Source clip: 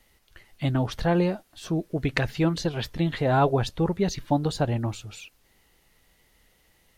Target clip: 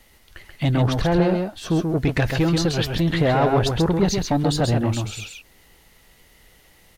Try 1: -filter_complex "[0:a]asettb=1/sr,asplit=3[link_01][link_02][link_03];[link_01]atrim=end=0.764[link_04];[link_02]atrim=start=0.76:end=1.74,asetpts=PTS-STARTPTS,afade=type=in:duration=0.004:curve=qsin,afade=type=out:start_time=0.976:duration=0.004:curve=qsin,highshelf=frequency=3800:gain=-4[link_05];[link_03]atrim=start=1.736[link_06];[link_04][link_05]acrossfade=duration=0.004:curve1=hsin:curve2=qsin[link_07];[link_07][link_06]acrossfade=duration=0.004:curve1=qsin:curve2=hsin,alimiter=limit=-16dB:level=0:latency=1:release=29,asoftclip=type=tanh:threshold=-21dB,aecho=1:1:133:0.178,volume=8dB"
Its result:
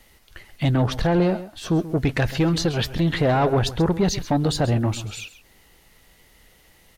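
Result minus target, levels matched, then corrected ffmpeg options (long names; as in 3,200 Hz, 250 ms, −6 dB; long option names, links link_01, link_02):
echo-to-direct −10.5 dB
-filter_complex "[0:a]asettb=1/sr,asplit=3[link_01][link_02][link_03];[link_01]atrim=end=0.764[link_04];[link_02]atrim=start=0.76:end=1.74,asetpts=PTS-STARTPTS,afade=type=in:duration=0.004:curve=qsin,afade=type=out:start_time=0.976:duration=0.004:curve=qsin,highshelf=frequency=3800:gain=-4[link_05];[link_03]atrim=start=1.736[link_06];[link_04][link_05]acrossfade=duration=0.004:curve1=hsin:curve2=qsin[link_07];[link_07][link_06]acrossfade=duration=0.004:curve1=qsin:curve2=hsin,alimiter=limit=-16dB:level=0:latency=1:release=29,asoftclip=type=tanh:threshold=-21dB,aecho=1:1:133:0.596,volume=8dB"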